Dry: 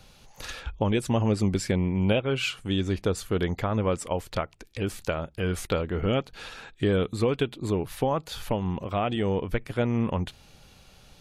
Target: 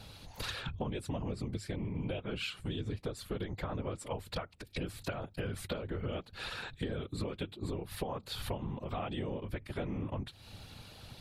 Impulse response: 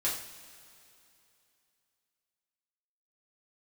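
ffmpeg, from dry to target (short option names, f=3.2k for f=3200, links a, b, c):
-af "afftfilt=real='hypot(re,im)*cos(2*PI*random(0))':imag='hypot(re,im)*sin(2*PI*random(1))':win_size=512:overlap=0.75,equalizer=f=100:t=o:w=0.33:g=7,equalizer=f=4k:t=o:w=0.33:g=5,equalizer=f=6.3k:t=o:w=0.33:g=-7,acompressor=threshold=-43dB:ratio=6,volume=7.5dB"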